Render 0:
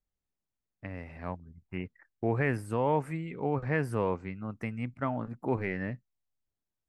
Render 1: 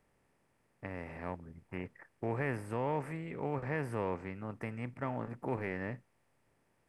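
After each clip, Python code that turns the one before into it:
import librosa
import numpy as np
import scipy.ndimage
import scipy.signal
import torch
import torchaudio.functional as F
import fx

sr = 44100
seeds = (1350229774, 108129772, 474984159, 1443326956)

y = fx.bin_compress(x, sr, power=0.6)
y = F.gain(torch.from_numpy(y), -8.5).numpy()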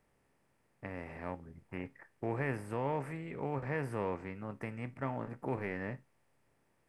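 y = fx.comb_fb(x, sr, f0_hz=68.0, decay_s=0.21, harmonics='all', damping=0.0, mix_pct=50)
y = F.gain(torch.from_numpy(y), 2.5).numpy()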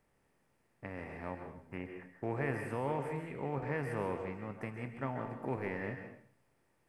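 y = fx.rev_plate(x, sr, seeds[0], rt60_s=0.57, hf_ratio=0.95, predelay_ms=120, drr_db=5.5)
y = F.gain(torch.from_numpy(y), -1.0).numpy()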